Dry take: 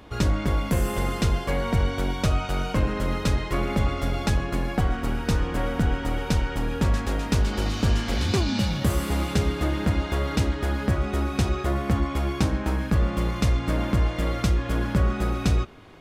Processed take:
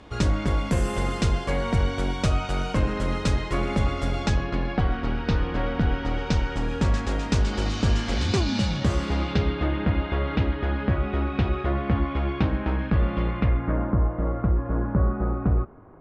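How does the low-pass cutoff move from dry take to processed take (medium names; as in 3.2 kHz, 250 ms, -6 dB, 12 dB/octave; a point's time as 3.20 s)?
low-pass 24 dB/octave
4.16 s 9.1 kHz
4.57 s 4.6 kHz
5.82 s 4.6 kHz
6.70 s 7.9 kHz
8.68 s 7.9 kHz
9.75 s 3.3 kHz
13.21 s 3.3 kHz
13.97 s 1.3 kHz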